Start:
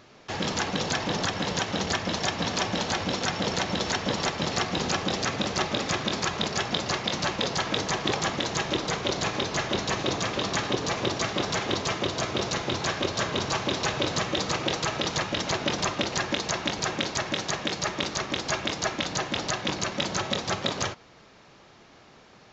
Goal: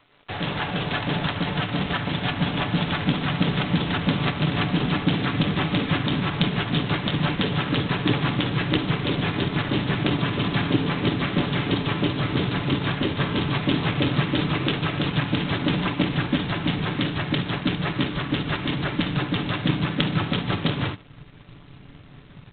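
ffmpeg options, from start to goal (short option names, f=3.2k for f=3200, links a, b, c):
-filter_complex "[0:a]aecho=1:1:73|146:0.141|0.0353,asubboost=boost=10:cutoff=190,acrossover=split=190|380|2800[a][b][c][d];[a]acompressor=threshold=-33dB:ratio=8[e];[e][b][c][d]amix=inputs=4:normalize=0,asplit=3[f][g][h];[g]asetrate=35002,aresample=44100,atempo=1.25992,volume=-18dB[i];[h]asetrate=37084,aresample=44100,atempo=1.18921,volume=-4dB[j];[f][i][j]amix=inputs=3:normalize=0,aeval=exprs='sgn(val(0))*max(abs(val(0))-0.00282,0)':c=same,aecho=1:1:6.9:0.44" -ar 8000 -c:a adpcm_g726 -b:a 16k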